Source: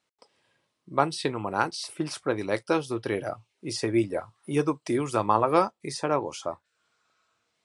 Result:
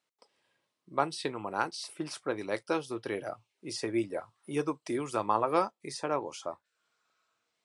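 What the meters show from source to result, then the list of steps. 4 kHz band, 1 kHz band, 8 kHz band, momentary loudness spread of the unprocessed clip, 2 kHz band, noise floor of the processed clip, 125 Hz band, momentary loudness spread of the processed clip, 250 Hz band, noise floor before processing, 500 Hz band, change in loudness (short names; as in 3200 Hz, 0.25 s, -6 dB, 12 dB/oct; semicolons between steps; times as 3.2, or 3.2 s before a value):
-5.0 dB, -5.0 dB, -5.0 dB, 11 LU, -5.0 dB, -84 dBFS, -10.0 dB, 11 LU, -6.5 dB, -79 dBFS, -5.5 dB, -6.0 dB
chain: HPF 200 Hz 6 dB/oct; gain -5 dB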